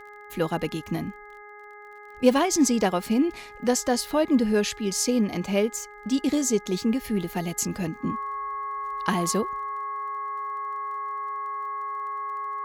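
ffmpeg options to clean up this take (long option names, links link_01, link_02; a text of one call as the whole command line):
ffmpeg -i in.wav -af "adeclick=threshold=4,bandreject=frequency=415.2:width_type=h:width=4,bandreject=frequency=830.4:width_type=h:width=4,bandreject=frequency=1245.6:width_type=h:width=4,bandreject=frequency=1660.8:width_type=h:width=4,bandreject=frequency=2076:width_type=h:width=4,bandreject=frequency=1100:width=30" out.wav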